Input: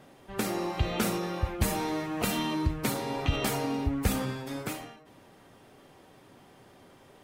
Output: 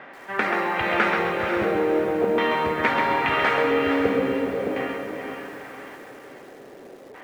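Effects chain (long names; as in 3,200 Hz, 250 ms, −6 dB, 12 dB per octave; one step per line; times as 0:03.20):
meter weighting curve A
in parallel at +1 dB: downward compressor, threshold −41 dBFS, peak gain reduction 13 dB
on the sum: auto-filter low-pass square 0.42 Hz 470–1,900 Hz
feedback delay with all-pass diffusion 470 ms, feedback 43%, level −5 dB
feedback echo at a low word length 133 ms, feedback 35%, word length 9 bits, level −5 dB
level +5.5 dB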